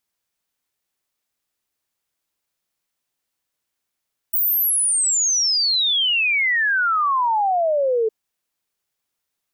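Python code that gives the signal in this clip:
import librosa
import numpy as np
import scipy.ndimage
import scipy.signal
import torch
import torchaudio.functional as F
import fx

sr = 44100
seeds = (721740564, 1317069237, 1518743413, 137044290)

y = fx.ess(sr, length_s=3.76, from_hz=16000.0, to_hz=430.0, level_db=-16.0)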